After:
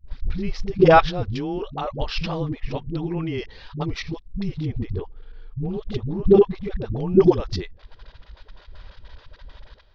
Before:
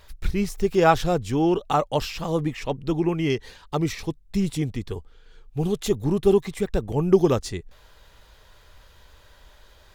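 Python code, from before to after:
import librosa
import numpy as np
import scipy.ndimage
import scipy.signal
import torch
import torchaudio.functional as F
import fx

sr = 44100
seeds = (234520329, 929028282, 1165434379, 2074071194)

y = fx.high_shelf(x, sr, hz=2900.0, db=-10.5, at=(4.46, 6.62))
y = fx.level_steps(y, sr, step_db=17)
y = scipy.signal.sosfilt(scipy.signal.butter(8, 5200.0, 'lowpass', fs=sr, output='sos'), y)
y = fx.low_shelf(y, sr, hz=85.0, db=8.0)
y = fx.dispersion(y, sr, late='highs', ms=82.0, hz=330.0)
y = y * 10.0 ** (7.0 / 20.0)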